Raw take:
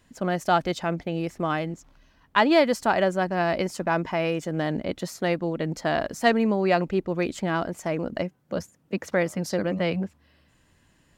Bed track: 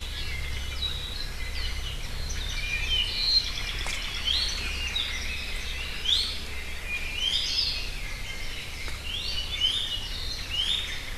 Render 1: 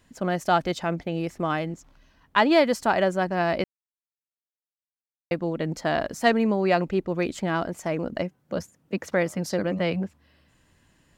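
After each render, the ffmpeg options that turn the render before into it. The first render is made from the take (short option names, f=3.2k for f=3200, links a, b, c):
-filter_complex "[0:a]asplit=3[a][b][c];[a]atrim=end=3.64,asetpts=PTS-STARTPTS,afade=t=out:st=3.636:d=0.004:c=hsin[d];[b]atrim=start=3.64:end=5.31,asetpts=PTS-STARTPTS,volume=0[e];[c]atrim=start=5.31,asetpts=PTS-STARTPTS,afade=t=in:d=0.004:c=hsin[f];[d][e][f]concat=n=3:v=0:a=1"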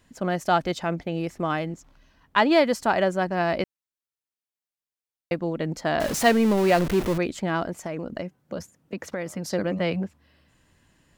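-filter_complex "[0:a]asettb=1/sr,asplit=3[a][b][c];[a]atrim=end=6.004[d];[b]atrim=start=6:end=7.18,asetpts=PTS-STARTPTS,afade=t=in:d=0.004:c=qsin,afade=t=out:st=1.176:d=0.004:c=qsin,aeval=exprs='val(0)+0.5*0.0596*sgn(val(0))':c=same[e];[c]atrim=start=7.176[f];[d][e]acrossfade=d=0.004:c1=hsin:c2=qsin[g];[g][f]acrossfade=d=0.004:c1=qsin:c2=hsin,asettb=1/sr,asplit=3[h][i][j];[h]atrim=end=7.734[k];[i]atrim=start=7.73:end=9.48,asetpts=PTS-STARTPTS,afade=t=in:d=0.004:c=qsin,afade=t=out:st=1.746:d=0.004:c=qsin,acompressor=threshold=-26dB:ratio=5:attack=3.2:release=140:knee=1:detection=peak[l];[j]atrim=start=9.476[m];[k][l]acrossfade=d=0.004:c1=hsin:c2=qsin[n];[n][m]acrossfade=d=0.004:c1=qsin:c2=hsin"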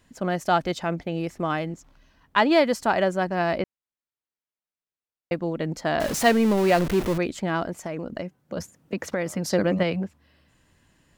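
-filter_complex "[0:a]asettb=1/sr,asplit=3[a][b][c];[a]atrim=end=3.594[d];[b]atrim=start=3.59:end=5.32,asetpts=PTS-STARTPTS,afade=t=in:d=0.004:c=qsin,afade=t=out:st=1.726:d=0.004:c=qsin,aemphasis=mode=reproduction:type=75kf[e];[c]atrim=start=5.316[f];[d][e]acrossfade=d=0.004:c1=hsin:c2=qsin[g];[g][f]acrossfade=d=0.004:c1=qsin:c2=hsin,asplit=3[h][i][j];[h]atrim=end=8.572[k];[i]atrim=start=8.568:end=9.832,asetpts=PTS-STARTPTS,volume=4dB[l];[j]atrim=start=9.828[m];[k][l]acrossfade=d=0.004:c1=hsin:c2=hsin[n];[n][m]acrossfade=d=0.004:c1=hsin:c2=hsin"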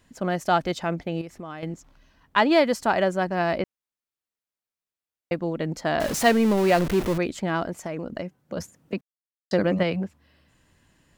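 -filter_complex "[0:a]asettb=1/sr,asplit=3[a][b][c];[a]atrim=end=1.214[d];[b]atrim=start=1.21:end=1.63,asetpts=PTS-STARTPTS,afade=t=in:d=0.004:c=qsin,afade=t=out:st=0.416:d=0.004:c=qsin,acompressor=threshold=-36dB:ratio=3:attack=3.2:release=140:knee=1:detection=peak[e];[c]atrim=start=1.626[f];[d][e]acrossfade=d=0.004:c1=hsin:c2=qsin[g];[g][f]acrossfade=d=0.004:c1=qsin:c2=hsin,asplit=3[h][i][j];[h]atrim=end=9.01,asetpts=PTS-STARTPTS,afade=t=out:st=9.006:d=0.004:c=hsin[k];[i]atrim=start=9.01:end=9.51,asetpts=PTS-STARTPTS,volume=0[l];[j]atrim=start=9.51,asetpts=PTS-STARTPTS,afade=t=in:d=0.004:c=hsin[m];[k][l][m]concat=n=3:v=0:a=1"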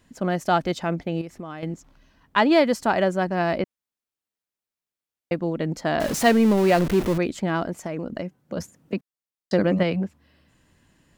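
-af "equalizer=f=230:w=0.8:g=3"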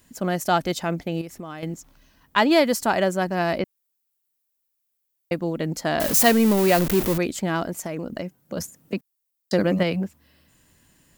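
-af "aemphasis=mode=production:type=50fm"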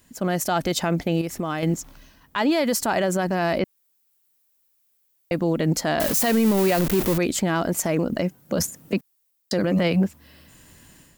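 -af "dynaudnorm=f=220:g=3:m=9dB,alimiter=limit=-12.5dB:level=0:latency=1:release=44"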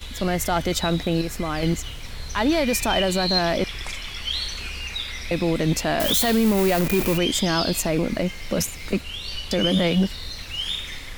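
-filter_complex "[1:a]volume=-1dB[a];[0:a][a]amix=inputs=2:normalize=0"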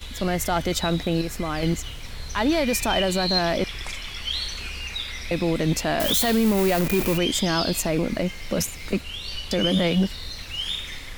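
-af "volume=-1dB"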